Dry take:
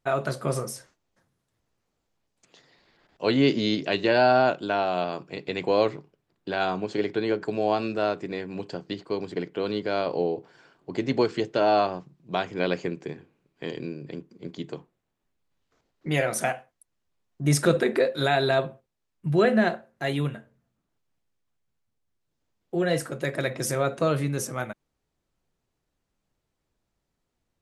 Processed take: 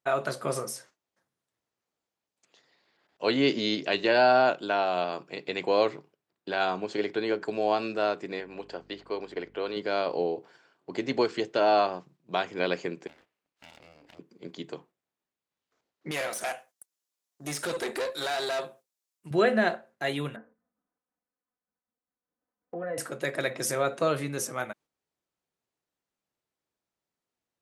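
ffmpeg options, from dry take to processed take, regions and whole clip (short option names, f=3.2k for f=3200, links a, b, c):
-filter_complex "[0:a]asettb=1/sr,asplit=3[a][b][c];[a]atrim=end=8.404[d];[b]atrim=start=8.4:end=9.77,asetpts=PTS-STARTPTS,afade=t=in:d=0.004:c=qsin,afade=t=out:st=1.366:d=0.004:c=qsin,bass=f=250:g=-11,treble=f=4k:g=-7,aeval=exprs='val(0)+0.00447*(sin(2*PI*50*n/s)+sin(2*PI*2*50*n/s)/2+sin(2*PI*3*50*n/s)/3+sin(2*PI*4*50*n/s)/4+sin(2*PI*5*50*n/s)/5)':c=same[e];[c]atrim=start=9.766[f];[d][e]acrossfade=d=0.004:c1=hsin:c2=qsin[g];[g][f]acrossfade=d=0.004:c1=qsin:c2=hsin,asettb=1/sr,asplit=3[h][i][j];[h]atrim=end=13.074[k];[i]atrim=start=13.07:end=14.19,asetpts=PTS-STARTPTS,afade=t=in:d=0.004:c=qsin,afade=t=out:st=1.116:d=0.004:c=qsin,equalizer=f=330:t=o:w=2.1:g=-7.5,acompressor=threshold=-46dB:ratio=2.5:attack=3.2:release=140:knee=1:detection=peak,aeval=exprs='abs(val(0))':c=same[l];[j]atrim=start=14.186[m];[k][l]acrossfade=d=0.004:c1=hsin:c2=qsin[n];[n][m]acrossfade=d=0.004:c1=qsin:c2=hsin,asettb=1/sr,asplit=3[o][p][q];[o]atrim=end=16.114[r];[p]atrim=start=16.11:end=19.31,asetpts=PTS-STARTPTS,afade=t=in:d=0.004:c=qsin,afade=t=out:st=3.196:d=0.004:c=qsin,bass=f=250:g=-8,treble=f=4k:g=14,acrossover=split=3200[s][t];[t]acompressor=threshold=-34dB:ratio=4:attack=1:release=60[u];[s][u]amix=inputs=2:normalize=0,aeval=exprs='(tanh(17.8*val(0)+0.55)-tanh(0.55))/17.8':c=same[v];[q]atrim=start=19.306[w];[r][v]acrossfade=d=0.004:c1=hsin:c2=qsin[x];[x][w]acrossfade=d=0.004:c1=qsin:c2=hsin,asettb=1/sr,asplit=3[y][z][aa];[y]atrim=end=20.364[ab];[z]atrim=start=20.36:end=22.98,asetpts=PTS-STARTPTS,afade=t=in:d=0.004:c=qsin,afade=t=out:st=2.616:d=0.004:c=qsin,lowpass=f=1.7k:w=0.5412,lowpass=f=1.7k:w=1.3066,aecho=1:1:4:1,atrim=end_sample=115542,acompressor=threshold=-31dB:ratio=3:attack=3.2:release=140:knee=1:detection=peak[ac];[aa]atrim=start=22.976[ad];[ab][ac]acrossfade=d=0.004:c1=hsin:c2=qsin[ae];[ae][ad]acrossfade=d=0.004:c1=qsin:c2=hsin,agate=range=-6dB:threshold=-52dB:ratio=16:detection=peak,highpass=f=370:p=1"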